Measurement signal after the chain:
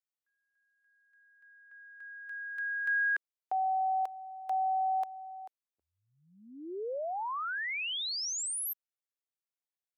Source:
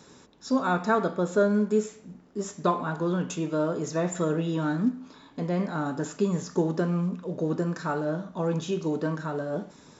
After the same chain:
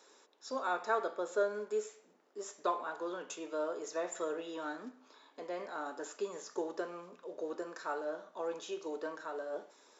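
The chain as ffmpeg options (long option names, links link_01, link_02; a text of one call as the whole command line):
ffmpeg -i in.wav -af "highpass=frequency=390:width=0.5412,highpass=frequency=390:width=1.3066,volume=-7.5dB" out.wav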